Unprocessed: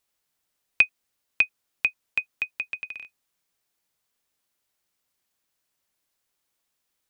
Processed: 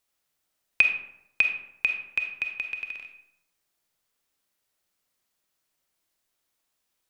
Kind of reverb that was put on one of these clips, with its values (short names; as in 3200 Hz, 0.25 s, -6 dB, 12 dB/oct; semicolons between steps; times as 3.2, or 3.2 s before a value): digital reverb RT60 0.81 s, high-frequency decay 0.55×, pre-delay 5 ms, DRR 4 dB; gain -1 dB